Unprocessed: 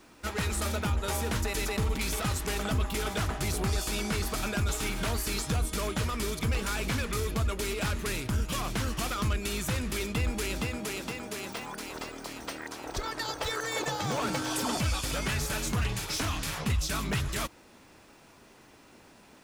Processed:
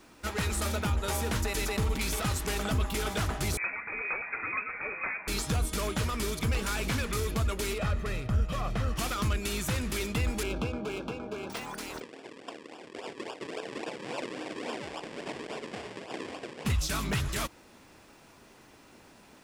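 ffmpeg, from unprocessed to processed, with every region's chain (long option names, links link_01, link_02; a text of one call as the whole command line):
ffmpeg -i in.wav -filter_complex "[0:a]asettb=1/sr,asplit=3[link_01][link_02][link_03];[link_01]atrim=end=3.574[link_04];[link_02]atrim=start=3.57:end=5.28,asetpts=PTS-STARTPTS,afade=type=in:duration=0.004:curve=qsin,afade=type=out:start_time=1.706:duration=0.004:curve=qsin,highpass=frequency=180:width=0.5412,highpass=frequency=180:width=1.3066,acrusher=bits=8:dc=4:mix=0:aa=0.000001,lowpass=frequency=2300:width_type=q:width=0.5098,lowpass=frequency=2300:width_type=q:width=0.6013,lowpass=frequency=2300:width_type=q:width=0.9,lowpass=frequency=2300:width_type=q:width=2.563,afreqshift=-2700[link_05];[link_03]atrim=start=5.276[link_06];[link_04][link_05]acrossfade=duration=0.004:curve1=hsin:curve2=qsin[link_07];[link_07][link_06]acrossfade=duration=0.004:curve1=qsin:curve2=hsin,asettb=1/sr,asplit=3[link_08][link_09][link_10];[link_08]atrim=end=7.784[link_11];[link_09]atrim=start=7.78:end=8.96,asetpts=PTS-STARTPTS,afade=type=in:duration=0.004:curve=qsin,afade=type=out:start_time=1.176:duration=0.004:curve=qsin,lowpass=frequency=1500:poles=1,aecho=1:1:1.6:0.5,atrim=end_sample=52038[link_12];[link_10]atrim=start=8.956[link_13];[link_11][link_12]acrossfade=duration=0.004:curve1=hsin:curve2=qsin[link_14];[link_14][link_13]acrossfade=duration=0.004:curve1=qsin:curve2=hsin,asettb=1/sr,asplit=3[link_15][link_16][link_17];[link_15]atrim=end=10.434[link_18];[link_16]atrim=start=10.43:end=11.5,asetpts=PTS-STARTPTS,afade=type=in:duration=0.004:curve=qsin,afade=type=out:start_time=1.066:duration=0.004:curve=qsin,equalizer=frequency=440:width_type=o:width=0.89:gain=3.5,adynamicsmooth=sensitivity=5.5:basefreq=1200,asuperstop=centerf=1900:order=20:qfactor=4.5[link_19];[link_17]atrim=start=11.496[link_20];[link_18][link_19]acrossfade=duration=0.004:curve1=hsin:curve2=qsin[link_21];[link_21][link_20]acrossfade=duration=0.004:curve1=qsin:curve2=hsin,asettb=1/sr,asplit=3[link_22][link_23][link_24];[link_22]atrim=end=12.004[link_25];[link_23]atrim=start=12:end=16.65,asetpts=PTS-STARTPTS,afade=type=in:duration=0.004:curve=qsin,afade=type=out:start_time=4.646:duration=0.004:curve=qsin,acrusher=samples=42:mix=1:aa=0.000001:lfo=1:lforange=42:lforate=3.6,highpass=390,equalizer=frequency=600:width_type=q:width=4:gain=-4,equalizer=frequency=870:width_type=q:width=4:gain=-4,equalizer=frequency=1300:width_type=q:width=4:gain=-10,equalizer=frequency=4000:width_type=q:width=4:gain=-6,equalizer=frequency=6300:width_type=q:width=4:gain=-9,lowpass=frequency=7500:width=0.5412,lowpass=frequency=7500:width=1.3066[link_26];[link_24]atrim=start=16.646[link_27];[link_25][link_26]acrossfade=duration=0.004:curve1=hsin:curve2=qsin[link_28];[link_28][link_27]acrossfade=duration=0.004:curve1=qsin:curve2=hsin" out.wav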